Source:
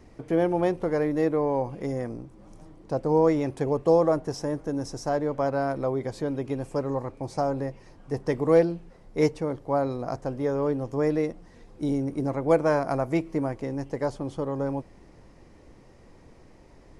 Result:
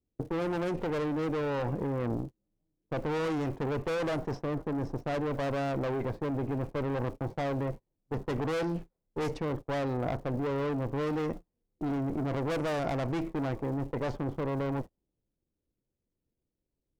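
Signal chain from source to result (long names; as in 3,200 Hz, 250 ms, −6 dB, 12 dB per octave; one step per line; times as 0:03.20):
low-pass that shuts in the quiet parts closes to 400 Hz, open at −18 dBFS
tube saturation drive 31 dB, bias 0.65
in parallel at −3 dB: compressor whose output falls as the input rises −39 dBFS, ratio −0.5
on the sum: surface crackle 330 per second −51 dBFS
noise gate −37 dBFS, range −37 dB
level +1 dB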